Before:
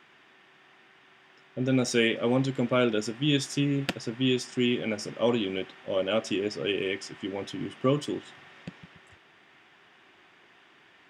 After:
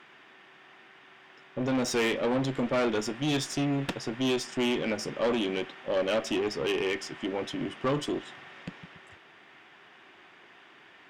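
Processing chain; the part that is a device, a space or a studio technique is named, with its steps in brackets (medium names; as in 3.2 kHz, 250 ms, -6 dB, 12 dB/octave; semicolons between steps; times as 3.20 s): tube preamp driven hard (valve stage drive 27 dB, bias 0.35; bass shelf 180 Hz -6 dB; treble shelf 4.2 kHz -5.5 dB); trim +5.5 dB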